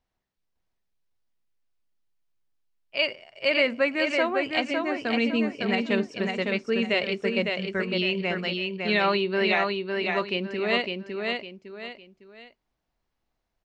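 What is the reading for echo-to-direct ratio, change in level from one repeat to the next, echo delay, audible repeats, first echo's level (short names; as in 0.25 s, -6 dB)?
-3.5 dB, -9.5 dB, 0.556 s, 3, -4.0 dB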